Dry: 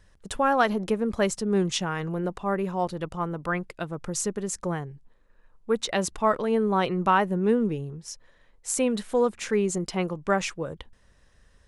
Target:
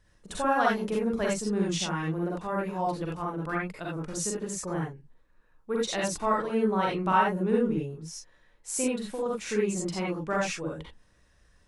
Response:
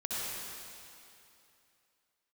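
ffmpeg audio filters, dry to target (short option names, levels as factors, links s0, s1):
-filter_complex "[0:a]asettb=1/sr,asplit=3[s0][s1][s2];[s0]atrim=end=8.864[s3];[s1]atrim=start=8.86:end=9.26,asetpts=PTS-STARTPTS,afade=t=in:d=0.004:c=qsin,afade=t=out:st=0.396:d=0.004:c=qsin,acompressor=threshold=0.0501:ratio=6[s4];[s2]atrim=start=9.256[s5];[s3][s4]acrossfade=d=0.004:c1=hsin:c2=qsin[s6];[s6][s5]acrossfade=d=0.004:c1=qsin:c2=hsin[s7];[1:a]atrim=start_sample=2205,afade=t=out:st=0.19:d=0.01,atrim=end_sample=8820,asetrate=66150,aresample=44100[s8];[s7][s8]afir=irnorm=-1:irlink=0"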